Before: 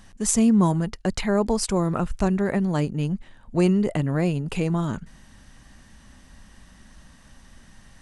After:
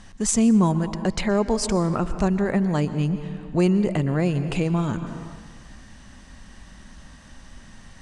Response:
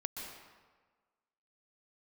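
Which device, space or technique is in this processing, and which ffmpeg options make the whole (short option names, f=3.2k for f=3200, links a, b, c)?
ducked reverb: -filter_complex "[0:a]lowpass=f=9k:w=0.5412,lowpass=f=9k:w=1.3066,asplit=3[a][b][c];[1:a]atrim=start_sample=2205[d];[b][d]afir=irnorm=-1:irlink=0[e];[c]apad=whole_len=353609[f];[e][f]sidechaincompress=threshold=-27dB:ratio=5:attack=5.8:release=464,volume=1dB[g];[a][g]amix=inputs=2:normalize=0,volume=-1.5dB"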